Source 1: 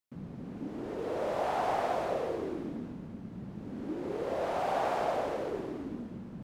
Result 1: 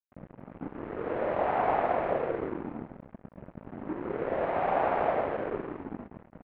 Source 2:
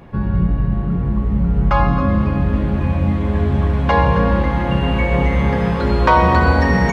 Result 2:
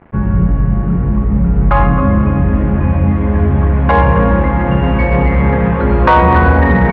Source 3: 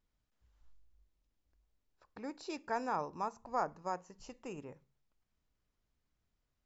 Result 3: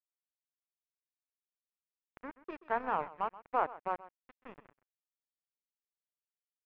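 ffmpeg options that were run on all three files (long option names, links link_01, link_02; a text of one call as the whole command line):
ffmpeg -i in.wav -af "aeval=exprs='sgn(val(0))*max(abs(val(0))-0.00944,0)':channel_layout=same,lowpass=frequency=2300:width=0.5412,lowpass=frequency=2300:width=1.3066,aecho=1:1:129:0.126,asoftclip=type=tanh:threshold=-7dB,volume=6dB" out.wav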